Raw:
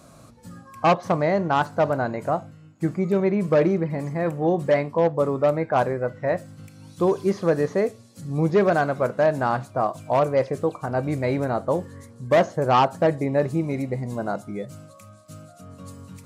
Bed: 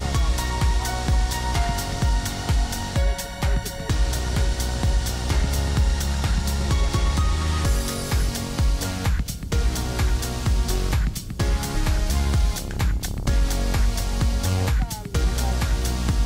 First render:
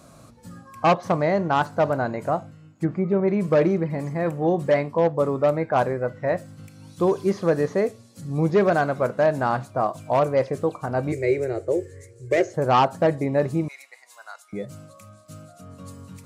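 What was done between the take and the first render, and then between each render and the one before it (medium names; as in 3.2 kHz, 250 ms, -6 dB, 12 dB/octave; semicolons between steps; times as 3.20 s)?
2.40–3.28 s: low-pass that closes with the level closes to 1.6 kHz, closed at -18 dBFS; 11.12–12.54 s: FFT filter 110 Hz 0 dB, 230 Hz -24 dB, 370 Hz +10 dB, 1 kHz -20 dB, 2.2 kHz +4 dB, 3.3 kHz -8 dB, 7.6 kHz +4 dB, 11 kHz -4 dB; 13.68–14.53 s: Bessel high-pass 1.7 kHz, order 4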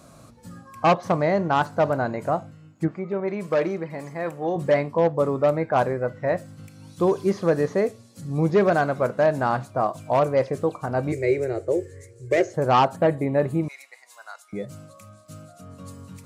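2.88–4.56 s: bass shelf 330 Hz -12 dB; 12.96–13.63 s: peaking EQ 5.5 kHz -14.5 dB 0.5 oct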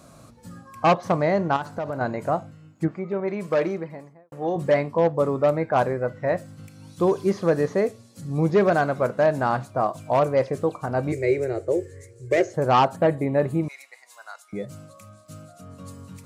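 1.56–2.01 s: compression, threshold -25 dBFS; 3.68–4.32 s: studio fade out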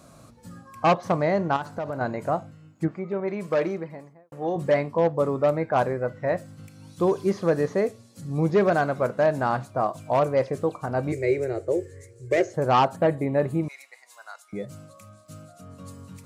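trim -1.5 dB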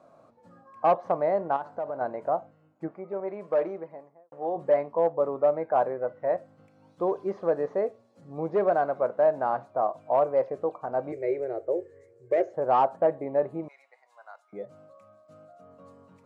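band-pass filter 670 Hz, Q 1.4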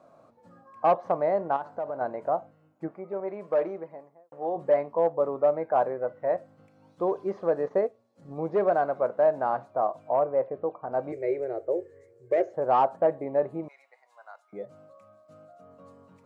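7.66–8.34 s: transient shaper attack +4 dB, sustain -7 dB; 10.11–10.91 s: distance through air 440 m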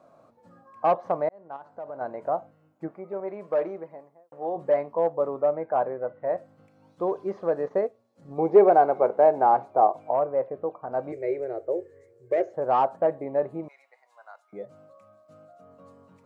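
1.29–2.28 s: fade in; 5.41–6.36 s: distance through air 220 m; 8.38–10.11 s: small resonant body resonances 400/790/2200 Hz, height 11 dB, ringing for 20 ms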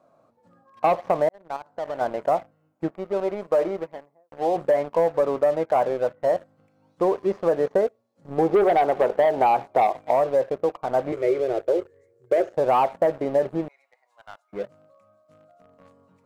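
waveshaping leveller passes 2; compression, threshold -16 dBFS, peak gain reduction 7.5 dB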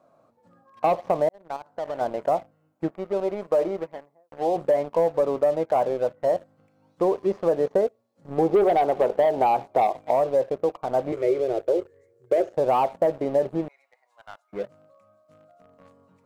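dynamic bell 1.6 kHz, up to -6 dB, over -37 dBFS, Q 1.1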